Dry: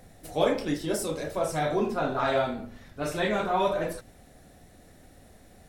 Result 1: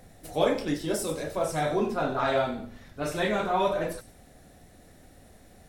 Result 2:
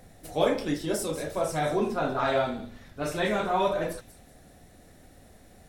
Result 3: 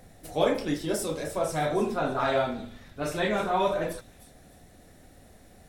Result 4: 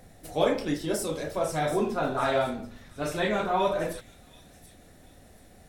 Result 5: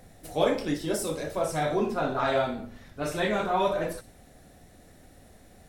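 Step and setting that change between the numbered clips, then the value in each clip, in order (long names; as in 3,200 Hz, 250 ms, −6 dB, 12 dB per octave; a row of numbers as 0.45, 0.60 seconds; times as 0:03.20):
delay with a high-pass on its return, delay time: 93, 188, 306, 732, 60 milliseconds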